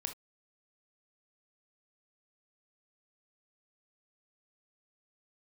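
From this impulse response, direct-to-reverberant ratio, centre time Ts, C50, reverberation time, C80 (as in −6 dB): 6.0 dB, 10 ms, 11.0 dB, non-exponential decay, 30.5 dB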